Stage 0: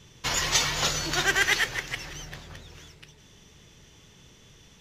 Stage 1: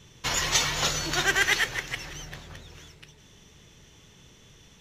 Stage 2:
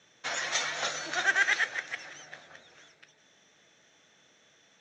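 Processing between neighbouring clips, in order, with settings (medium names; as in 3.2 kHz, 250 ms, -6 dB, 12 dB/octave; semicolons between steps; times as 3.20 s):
band-stop 4.8 kHz, Q 19
cabinet simulation 400–6000 Hz, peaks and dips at 400 Hz -8 dB, 670 Hz +4 dB, 1 kHz -8 dB, 1.6 kHz +4 dB, 2.9 kHz -8 dB, 4.7 kHz -8 dB; trim -2.5 dB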